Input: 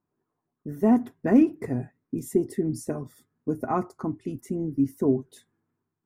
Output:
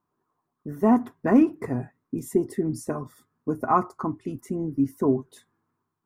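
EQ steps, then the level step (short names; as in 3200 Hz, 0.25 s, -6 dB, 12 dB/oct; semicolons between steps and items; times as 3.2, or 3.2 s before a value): bell 1100 Hz +10.5 dB 0.82 oct; 0.0 dB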